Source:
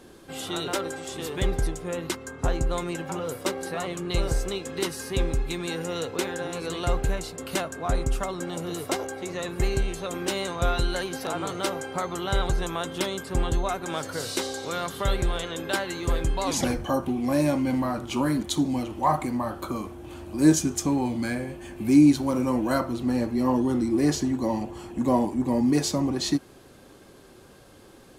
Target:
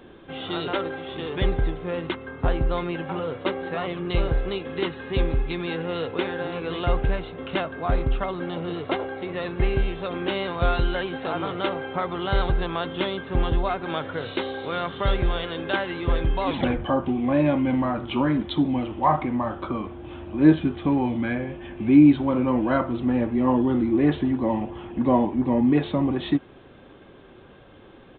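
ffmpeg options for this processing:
-af "aresample=8000,aresample=44100,volume=1.33"

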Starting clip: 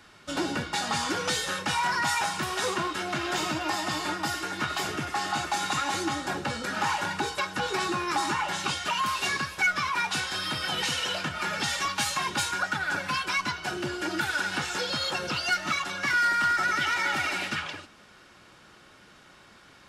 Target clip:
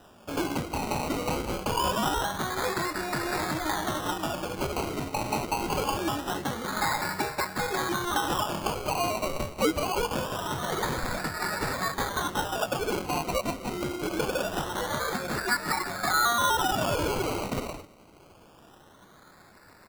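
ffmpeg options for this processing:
-af "aresample=11025,aresample=44100,acrusher=samples=20:mix=1:aa=0.000001:lfo=1:lforange=12:lforate=0.24"

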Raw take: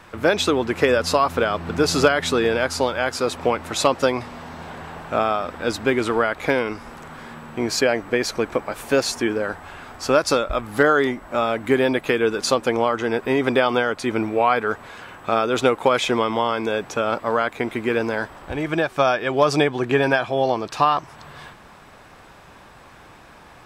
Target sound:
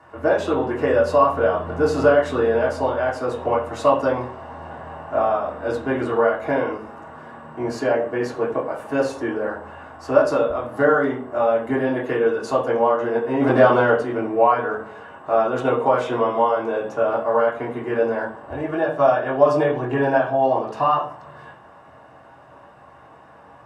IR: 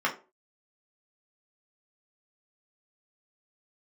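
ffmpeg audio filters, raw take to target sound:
-filter_complex "[0:a]asplit=3[s0][s1][s2];[s0]afade=t=out:st=13.39:d=0.02[s3];[s1]acontrast=75,afade=t=in:st=13.39:d=0.02,afade=t=out:st=13.94:d=0.02[s4];[s2]afade=t=in:st=13.94:d=0.02[s5];[s3][s4][s5]amix=inputs=3:normalize=0[s6];[1:a]atrim=start_sample=2205,asetrate=22932,aresample=44100[s7];[s6][s7]afir=irnorm=-1:irlink=0,volume=0.15"

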